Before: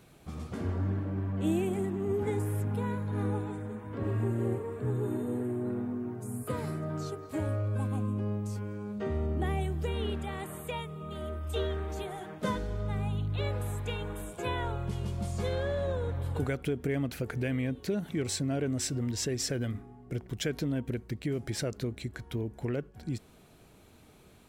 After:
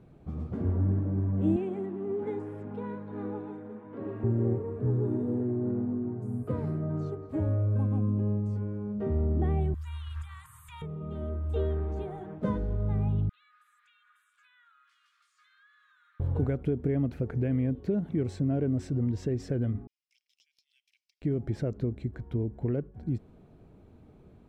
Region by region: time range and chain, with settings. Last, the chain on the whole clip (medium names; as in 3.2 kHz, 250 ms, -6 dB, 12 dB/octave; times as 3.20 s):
1.56–4.24 s: band-pass 200–4600 Hz + tilt EQ +2 dB/octave
9.74–10.82 s: tone controls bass -8 dB, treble +15 dB + transient shaper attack -4 dB, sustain +11 dB + Chebyshev band-stop 130–980 Hz, order 5
13.29–16.20 s: rippled Chebyshev high-pass 1.2 kHz, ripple 3 dB + compression 3:1, threshold -53 dBFS
19.87–21.22 s: steep high-pass 2.5 kHz 48 dB/octave + peaking EQ 5.3 kHz +15 dB 0.43 oct + compression, threshold -49 dBFS
whole clip: low-pass 1.1 kHz 6 dB/octave; tilt shelf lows +5 dB, about 680 Hz